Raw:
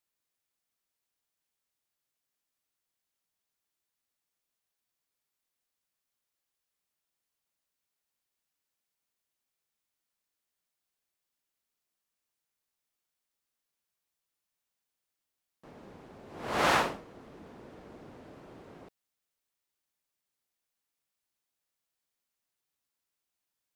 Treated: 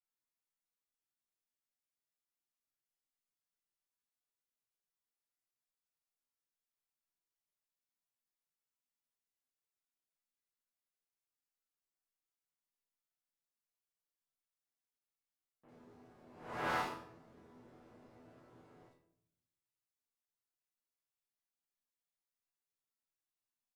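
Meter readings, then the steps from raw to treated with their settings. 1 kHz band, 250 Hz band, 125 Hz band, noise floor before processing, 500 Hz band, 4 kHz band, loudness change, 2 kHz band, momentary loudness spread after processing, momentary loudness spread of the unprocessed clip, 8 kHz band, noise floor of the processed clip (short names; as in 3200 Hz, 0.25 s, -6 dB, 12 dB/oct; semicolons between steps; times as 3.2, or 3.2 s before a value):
-9.5 dB, -10.5 dB, -9.5 dB, under -85 dBFS, -12.0 dB, -14.5 dB, -11.0 dB, -10.5 dB, 19 LU, 18 LU, -16.0 dB, under -85 dBFS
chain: dynamic EQ 7700 Hz, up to -5 dB, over -48 dBFS, Q 0.84; resonator bank E2 sus4, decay 0.4 s; bands offset in time lows, highs 50 ms, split 3100 Hz; shoebox room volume 180 m³, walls mixed, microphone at 0.42 m; gain +2 dB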